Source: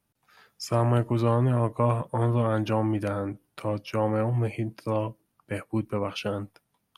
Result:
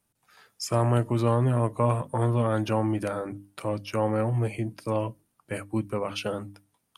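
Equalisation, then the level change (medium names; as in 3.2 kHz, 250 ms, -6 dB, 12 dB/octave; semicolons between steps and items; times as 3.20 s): peaking EQ 8.5 kHz +7 dB 0.83 oct; hum notches 50/100/150/200/250/300 Hz; 0.0 dB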